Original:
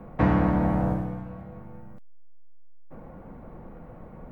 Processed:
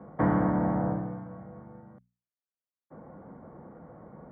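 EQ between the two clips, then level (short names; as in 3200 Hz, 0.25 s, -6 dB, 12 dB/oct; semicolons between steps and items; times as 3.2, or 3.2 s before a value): polynomial smoothing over 41 samples; HPF 110 Hz 12 dB/oct; notches 60/120/180/240 Hz; -2.0 dB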